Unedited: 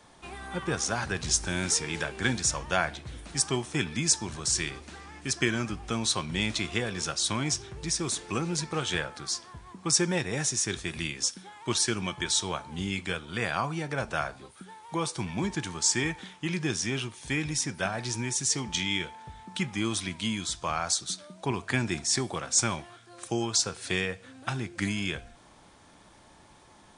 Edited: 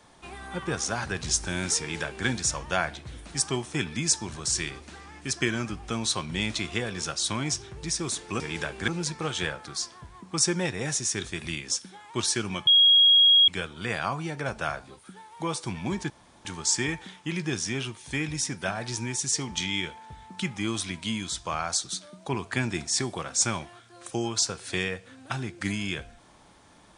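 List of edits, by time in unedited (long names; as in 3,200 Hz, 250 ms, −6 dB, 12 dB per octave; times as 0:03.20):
0:01.79–0:02.27: duplicate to 0:08.40
0:12.19–0:13.00: beep over 3,290 Hz −14 dBFS
0:15.62: splice in room tone 0.35 s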